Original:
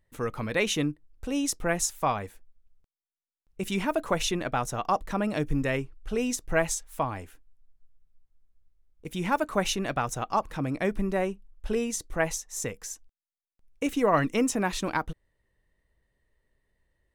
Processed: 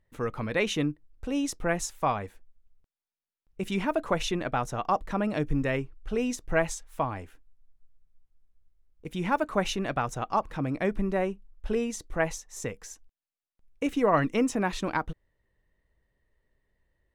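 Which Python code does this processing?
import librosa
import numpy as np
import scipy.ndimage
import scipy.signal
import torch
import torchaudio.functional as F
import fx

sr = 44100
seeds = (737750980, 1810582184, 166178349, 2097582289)

y = fx.high_shelf(x, sr, hz=5600.0, db=-10.5)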